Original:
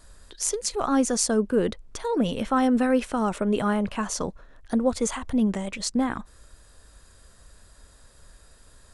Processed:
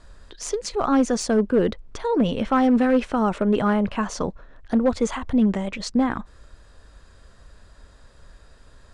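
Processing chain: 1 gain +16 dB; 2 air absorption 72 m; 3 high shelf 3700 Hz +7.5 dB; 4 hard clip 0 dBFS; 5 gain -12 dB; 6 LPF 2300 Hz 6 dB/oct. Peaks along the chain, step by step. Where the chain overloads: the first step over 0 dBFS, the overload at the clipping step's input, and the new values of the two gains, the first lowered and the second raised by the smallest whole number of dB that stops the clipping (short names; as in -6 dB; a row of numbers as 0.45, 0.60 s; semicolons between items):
+10.0, +5.0, +9.5, 0.0, -12.0, -12.0 dBFS; step 1, 9.5 dB; step 1 +6 dB, step 5 -2 dB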